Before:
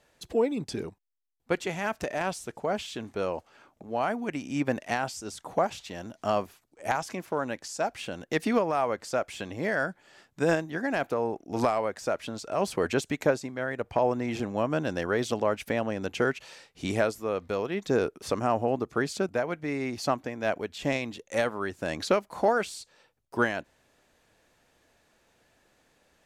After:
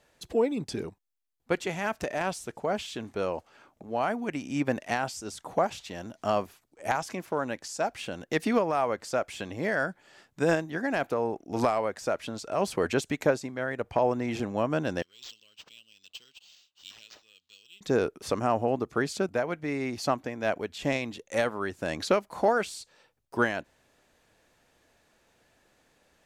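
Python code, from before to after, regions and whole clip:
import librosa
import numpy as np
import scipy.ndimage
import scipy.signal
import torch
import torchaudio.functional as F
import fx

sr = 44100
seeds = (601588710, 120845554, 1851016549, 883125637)

y = fx.chain(x, sr, fx.ellip_highpass(hz=2900.0, order=4, stop_db=40),
    fx.high_shelf(hz=7300.0, db=-7.0),
    fx.resample_linear(factor=4), at=(15.02, 17.81))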